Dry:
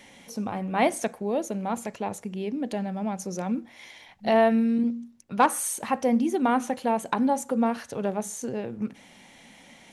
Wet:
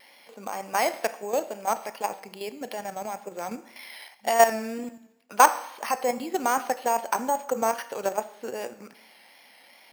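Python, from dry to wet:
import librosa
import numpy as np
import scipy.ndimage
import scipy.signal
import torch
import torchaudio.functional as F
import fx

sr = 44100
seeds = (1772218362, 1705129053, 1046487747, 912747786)

y = scipy.signal.sosfilt(scipy.signal.butter(2, 570.0, 'highpass', fs=sr, output='sos'), x)
y = fx.high_shelf(y, sr, hz=8200.0, db=11.5)
y = fx.level_steps(y, sr, step_db=10)
y = np.repeat(scipy.signal.resample_poly(y, 1, 6), 6)[:len(y)]
y = fx.rev_schroeder(y, sr, rt60_s=0.87, comb_ms=25, drr_db=14.0)
y = fx.wow_flutter(y, sr, seeds[0], rate_hz=2.1, depth_cents=50.0)
y = y * 10.0 ** (7.5 / 20.0)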